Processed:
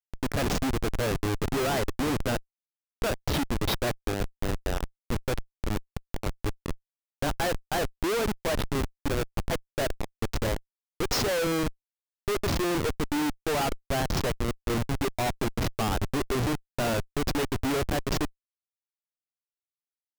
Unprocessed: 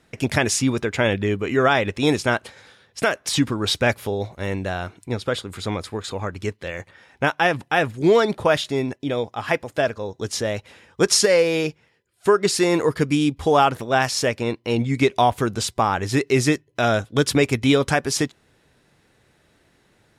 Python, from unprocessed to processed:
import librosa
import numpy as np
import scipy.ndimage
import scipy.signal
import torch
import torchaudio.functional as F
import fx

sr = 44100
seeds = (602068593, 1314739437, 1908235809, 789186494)

y = scipy.signal.sosfilt(scipy.signal.butter(4, 6300.0, 'lowpass', fs=sr, output='sos'), x)
y = fx.peak_eq(y, sr, hz=150.0, db=-14.0, octaves=0.25)
y = fx.schmitt(y, sr, flips_db=-20.5)
y = F.gain(torch.from_numpy(y), -3.5).numpy()